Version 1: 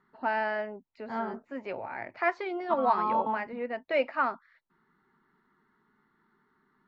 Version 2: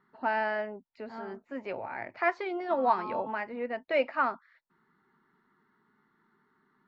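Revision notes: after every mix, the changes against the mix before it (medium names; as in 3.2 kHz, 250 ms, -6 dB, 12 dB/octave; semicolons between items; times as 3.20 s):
second voice -9.5 dB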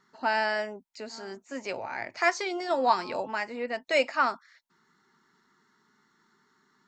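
second voice -9.0 dB; master: remove distance through air 490 m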